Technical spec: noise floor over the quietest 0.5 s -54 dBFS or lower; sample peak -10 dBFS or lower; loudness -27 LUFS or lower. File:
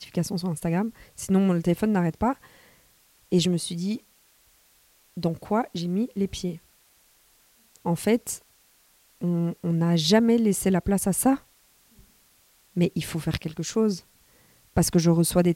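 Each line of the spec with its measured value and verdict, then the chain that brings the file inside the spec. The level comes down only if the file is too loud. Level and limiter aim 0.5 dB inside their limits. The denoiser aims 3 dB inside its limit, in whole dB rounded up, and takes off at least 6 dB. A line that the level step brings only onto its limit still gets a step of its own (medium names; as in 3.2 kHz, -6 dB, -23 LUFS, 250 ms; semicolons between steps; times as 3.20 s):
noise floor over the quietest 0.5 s -61 dBFS: pass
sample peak -6.5 dBFS: fail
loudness -25.0 LUFS: fail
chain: trim -2.5 dB; peak limiter -10.5 dBFS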